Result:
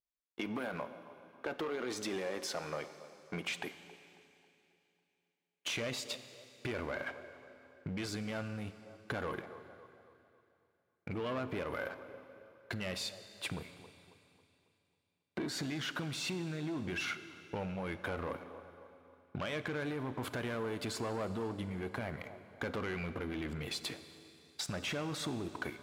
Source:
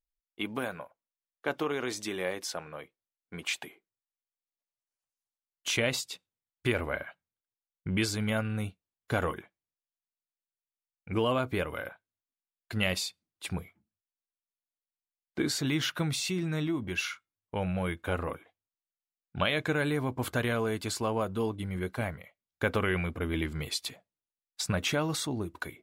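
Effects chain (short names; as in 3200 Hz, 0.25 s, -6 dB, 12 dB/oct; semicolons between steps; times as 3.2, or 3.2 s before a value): sample leveller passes 2; limiter -23.5 dBFS, peak gain reduction 10 dB; high shelf 4400 Hz -11.5 dB; band-limited delay 0.273 s, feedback 45%, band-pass 580 Hz, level -18 dB; tube stage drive 26 dB, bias 0.4; compressor, threshold -37 dBFS, peak gain reduction 8 dB; HPF 160 Hz 6 dB/oct; Schroeder reverb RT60 2.9 s, combs from 31 ms, DRR 12 dB; gain +3 dB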